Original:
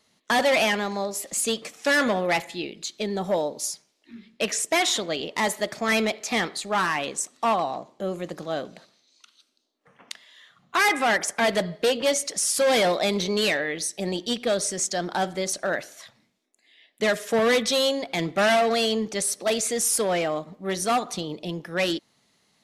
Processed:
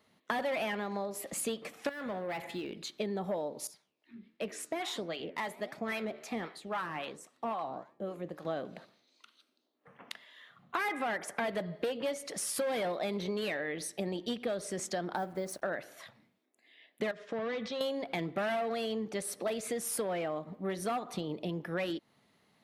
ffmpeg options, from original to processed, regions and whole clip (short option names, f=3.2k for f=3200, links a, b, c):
-filter_complex "[0:a]asettb=1/sr,asplit=3[a][b][c];[a]atrim=end=1.894[d];[b]atrim=start=1.89:end=2.75,asetpts=PTS-STARTPTS,afade=t=in:d=0.004:c=qsin,afade=t=out:st=0.856:d=0.004:c=qsin,acompressor=threshold=-32dB:ratio=5:attack=3.2:release=140:knee=1:detection=peak,volume=31dB,asoftclip=hard,volume=-31dB[e];[c]atrim=start=2.746[f];[d][e]acrossfade=d=0.004:c1=hsin:c2=qsin[g];[g][f]acrossfade=d=0.004:c1=qsin:c2=hsin,asettb=1/sr,asplit=3[h][i][j];[h]atrim=end=3.674[k];[i]atrim=start=3.67:end=8.45,asetpts=PTS-STARTPTS,afade=t=in:d=0.004:c=qsin,afade=t=out:st=4.776:d=0.004:c=qsin,acrossover=split=660[l][m];[l]aeval=exprs='val(0)*(1-0.7/2+0.7/2*cos(2*PI*3.7*n/s))':c=same[n];[m]aeval=exprs='val(0)*(1-0.7/2-0.7/2*cos(2*PI*3.7*n/s))':c=same[o];[n][o]amix=inputs=2:normalize=0,flanger=delay=5.9:depth=7.6:regen=88:speed=1.4:shape=sinusoidal[p];[j]atrim=start=8.446[q];[k][p]acrossfade=d=0.004:c1=hsin:c2=qsin[r];[r][q]acrossfade=d=0.004:c1=qsin:c2=hsin,asettb=1/sr,asplit=3[s][t][u];[s]atrim=end=15.164[v];[t]atrim=start=15.16:end=15.62,asetpts=PTS-STARTPTS,afade=t=in:d=0.004:c=qsin,afade=t=out:st=0.456:d=0.004:c=qsin,equalizer=f=2.8k:w=2.5:g=-15,aeval=exprs='sgn(val(0))*max(abs(val(0))-0.00398,0)':c=same,acrusher=bits=7:mode=log:mix=0:aa=0.000001[w];[u]atrim=start=15.616[x];[v][w]acrossfade=d=0.004:c1=hsin:c2=qsin[y];[y][x]acrossfade=d=0.004:c1=qsin:c2=hsin,asettb=1/sr,asplit=3[z][aa][ab];[z]atrim=end=17.114[ac];[aa]atrim=start=17.11:end=17.81,asetpts=PTS-STARTPTS,afade=t=in:d=0.004:c=qsin,afade=t=out:st=0.696:d=0.004:c=qsin,lowpass=f=5.9k:w=0.5412,lowpass=f=5.9k:w=1.3066,agate=range=-33dB:threshold=-36dB:ratio=3:release=100:detection=peak,acompressor=threshold=-33dB:ratio=5:attack=3.2:release=140:knee=1:detection=peak[ad];[ab]atrim=start=17.806[ae];[ac][ad]acrossfade=d=0.004:c1=hsin:c2=qsin[af];[af][ae]acrossfade=d=0.004:c1=qsin:c2=hsin,highpass=49,equalizer=f=6.6k:t=o:w=1.6:g=-13.5,acompressor=threshold=-32dB:ratio=6"